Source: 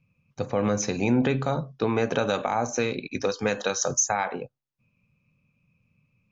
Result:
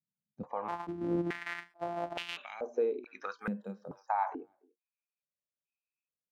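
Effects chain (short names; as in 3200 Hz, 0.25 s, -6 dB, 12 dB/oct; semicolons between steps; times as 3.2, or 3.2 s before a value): 0.68–2.37 sample sorter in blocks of 256 samples; notches 60/120/180/240/300/360 Hz; spectral noise reduction 21 dB; speakerphone echo 0.29 s, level -24 dB; 3.38–4.08 careless resampling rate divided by 4×, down filtered, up hold; stepped band-pass 2.3 Hz 210–2800 Hz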